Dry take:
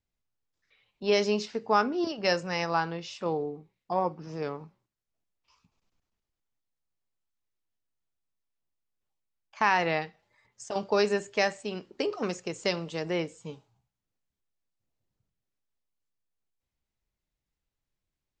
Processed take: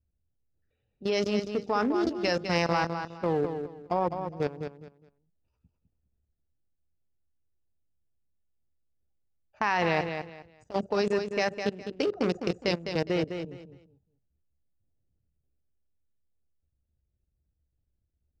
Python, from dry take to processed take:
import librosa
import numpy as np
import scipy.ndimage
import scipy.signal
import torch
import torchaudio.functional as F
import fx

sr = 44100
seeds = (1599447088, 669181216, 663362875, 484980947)

p1 = fx.wiener(x, sr, points=41)
p2 = fx.peak_eq(p1, sr, hz=72.0, db=14.0, octaves=0.76)
p3 = fx.level_steps(p2, sr, step_db=17)
p4 = p3 + fx.echo_feedback(p3, sr, ms=206, feedback_pct=24, wet_db=-7.5, dry=0)
y = F.gain(torch.from_numpy(p4), 8.0).numpy()